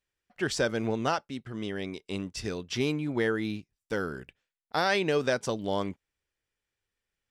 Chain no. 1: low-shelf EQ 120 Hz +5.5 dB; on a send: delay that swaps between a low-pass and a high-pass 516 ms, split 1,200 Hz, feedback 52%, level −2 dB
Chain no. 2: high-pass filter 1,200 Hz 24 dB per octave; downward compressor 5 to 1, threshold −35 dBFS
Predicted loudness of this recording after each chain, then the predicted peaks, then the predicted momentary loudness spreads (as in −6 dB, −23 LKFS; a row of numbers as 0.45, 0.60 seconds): −29.0, −41.0 LKFS; −12.0, −22.5 dBFS; 10, 10 LU